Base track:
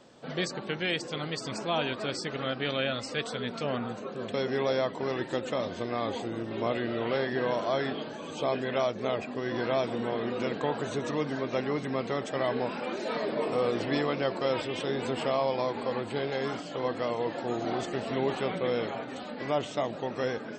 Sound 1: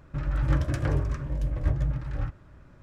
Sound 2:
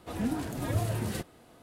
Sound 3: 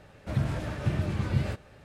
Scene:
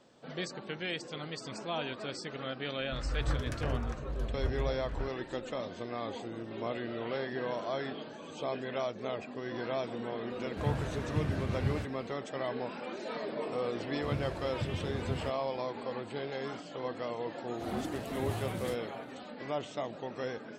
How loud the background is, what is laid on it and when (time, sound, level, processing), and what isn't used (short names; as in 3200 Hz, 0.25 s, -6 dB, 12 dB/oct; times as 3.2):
base track -6.5 dB
2.78 add 1 -5 dB + bell 170 Hz -7.5 dB 2.3 oct
10.3 add 3 -5 dB
13.75 add 3 -8.5 dB
17.53 add 2 -7.5 dB, fades 0.05 s